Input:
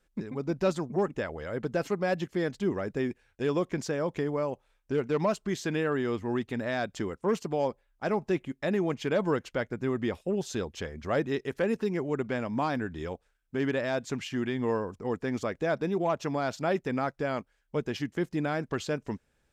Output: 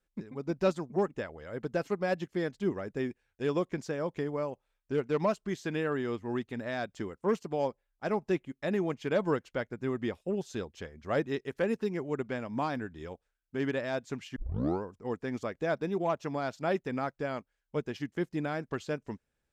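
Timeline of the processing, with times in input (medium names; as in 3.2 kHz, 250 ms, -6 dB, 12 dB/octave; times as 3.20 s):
14.36 s: tape start 0.47 s
whole clip: upward expansion 1.5:1, over -42 dBFS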